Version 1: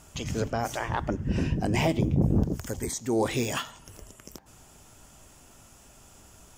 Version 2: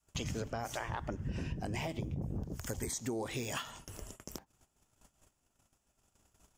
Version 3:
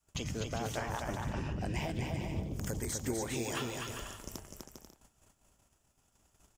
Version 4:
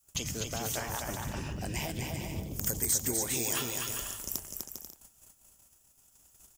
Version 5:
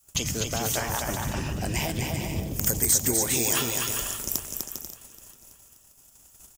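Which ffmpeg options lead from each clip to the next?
-af "agate=range=-26dB:threshold=-49dB:ratio=16:detection=peak,adynamicequalizer=threshold=0.0126:dfrequency=280:dqfactor=0.72:tfrequency=280:tqfactor=0.72:attack=5:release=100:ratio=0.375:range=2.5:mode=cutabove:tftype=bell,acompressor=threshold=-34dB:ratio=12"
-af "aecho=1:1:250|400|490|544|576.4:0.631|0.398|0.251|0.158|0.1"
-af "aemphasis=mode=production:type=75fm"
-af "aecho=1:1:578|1156|1734:0.112|0.0426|0.0162,volume=7dB"

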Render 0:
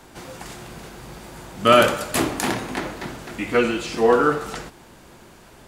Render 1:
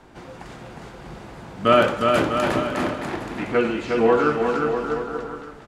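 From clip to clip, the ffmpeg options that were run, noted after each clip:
-af "aemphasis=mode=reproduction:type=75fm,aecho=1:1:360|648|878.4|1063|1210:0.631|0.398|0.251|0.158|0.1,volume=-2dB"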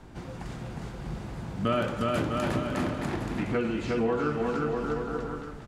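-af "bass=f=250:g=10,treble=f=4k:g=3,acompressor=threshold=-23dB:ratio=2.5,volume=-4dB"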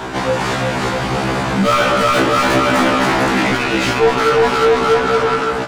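-filter_complex "[0:a]asplit=2[a][b];[b]highpass=f=720:p=1,volume=32dB,asoftclip=type=tanh:threshold=-13dB[c];[a][c]amix=inputs=2:normalize=0,lowpass=f=4.5k:p=1,volume=-6dB,afftfilt=real='re*1.73*eq(mod(b,3),0)':imag='im*1.73*eq(mod(b,3),0)':win_size=2048:overlap=0.75,volume=8dB"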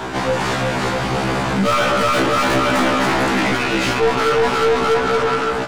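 -af "aeval=exprs='(tanh(3.55*val(0)+0.25)-tanh(0.25))/3.55':c=same"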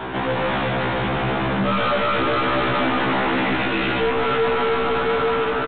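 -af "aecho=1:1:81.63|142.9:0.282|0.794,aresample=8000,asoftclip=type=tanh:threshold=-13dB,aresample=44100,volume=-2.5dB"

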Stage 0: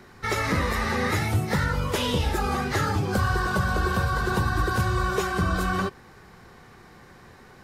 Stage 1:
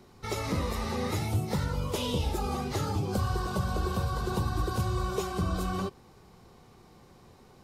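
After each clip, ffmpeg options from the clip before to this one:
-af "equalizer=f=1.7k:t=o:w=0.71:g=-13.5,volume=-4.5dB"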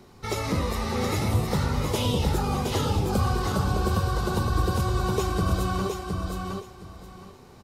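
-af "aecho=1:1:716|1432|2148:0.596|0.125|0.0263,volume=4dB"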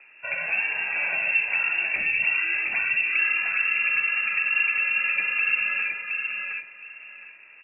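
-af "lowpass=f=2.4k:t=q:w=0.5098,lowpass=f=2.4k:t=q:w=0.6013,lowpass=f=2.4k:t=q:w=0.9,lowpass=f=2.4k:t=q:w=2.563,afreqshift=-2800"

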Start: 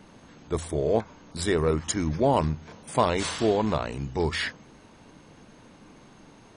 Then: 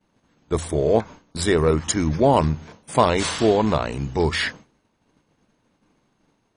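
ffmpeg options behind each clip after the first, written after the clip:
-af "agate=range=-33dB:threshold=-38dB:ratio=3:detection=peak,volume=5.5dB"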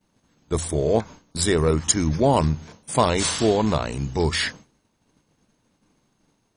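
-af "bass=f=250:g=3,treble=f=4k:g=8,volume=-2.5dB"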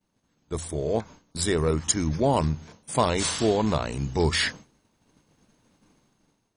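-af "dynaudnorm=f=390:g=5:m=14dB,volume=-7.5dB"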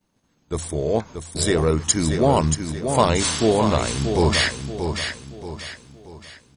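-af "aecho=1:1:631|1262|1893|2524|3155:0.447|0.179|0.0715|0.0286|0.0114,volume=4.5dB"

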